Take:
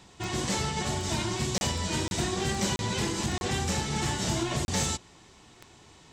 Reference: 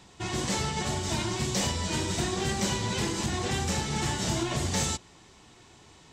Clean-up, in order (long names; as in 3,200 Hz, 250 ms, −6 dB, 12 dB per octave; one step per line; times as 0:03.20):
click removal
repair the gap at 0:01.58/0:02.08/0:02.76/0:03.38/0:04.65, 31 ms